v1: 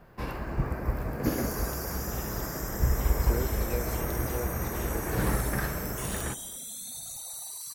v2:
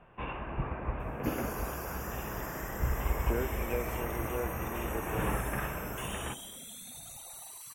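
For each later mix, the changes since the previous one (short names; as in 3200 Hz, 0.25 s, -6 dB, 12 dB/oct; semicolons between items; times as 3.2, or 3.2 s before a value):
first sound: add rippled Chebyshev low-pass 3700 Hz, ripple 6 dB; master: add resonant high shelf 3600 Hz -6.5 dB, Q 3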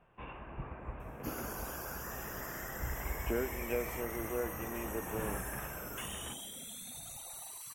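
first sound -8.5 dB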